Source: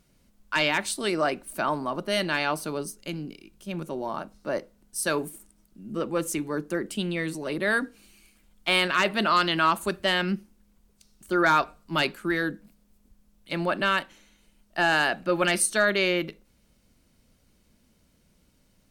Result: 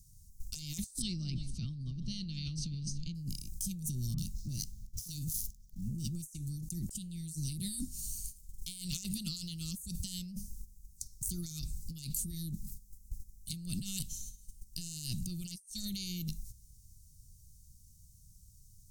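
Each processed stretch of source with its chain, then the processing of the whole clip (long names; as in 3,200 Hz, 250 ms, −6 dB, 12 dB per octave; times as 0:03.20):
0:01.02–0:03.15: low-pass filter 4,100 Hz 24 dB per octave + delay that swaps between a low-pass and a high-pass 167 ms, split 940 Hz, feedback 51%, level −12 dB
0:04.14–0:06.22: running median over 5 samples + parametric band 3,000 Hz +2.5 dB 1.8 octaves + multiband delay without the direct sound lows, highs 40 ms, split 1,500 Hz
whole clip: noise gate −57 dBFS, range −11 dB; elliptic band-stop filter 120–6,200 Hz, stop band 60 dB; compressor whose output falls as the input rises −54 dBFS, ratio −1; level +12.5 dB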